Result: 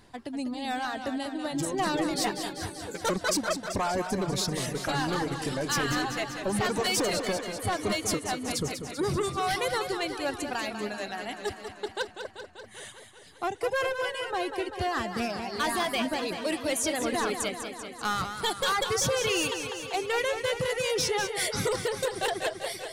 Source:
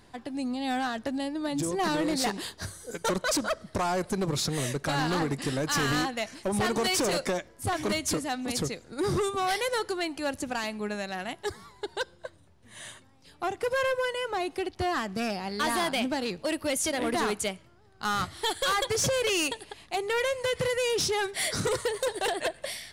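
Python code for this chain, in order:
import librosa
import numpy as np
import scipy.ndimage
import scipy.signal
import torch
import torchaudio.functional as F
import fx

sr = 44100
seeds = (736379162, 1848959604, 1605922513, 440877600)

y = fx.dereverb_blind(x, sr, rt60_s=1.9)
y = fx.echo_warbled(y, sr, ms=194, feedback_pct=70, rate_hz=2.8, cents=104, wet_db=-8.5)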